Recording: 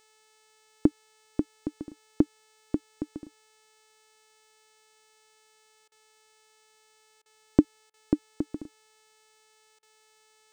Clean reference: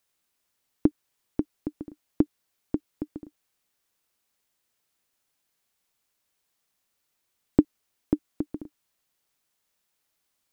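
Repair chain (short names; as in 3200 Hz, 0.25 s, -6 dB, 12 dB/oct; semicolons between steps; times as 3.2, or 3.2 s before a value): de-hum 435 Hz, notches 21; interpolate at 5.88/7.22/7.9/9.79, 37 ms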